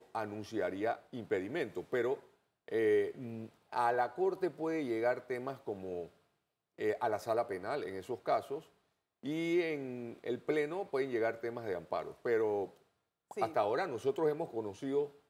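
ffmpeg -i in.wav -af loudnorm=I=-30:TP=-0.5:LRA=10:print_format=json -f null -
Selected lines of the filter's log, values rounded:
"input_i" : "-36.0",
"input_tp" : "-18.6",
"input_lra" : "1.5",
"input_thresh" : "-46.3",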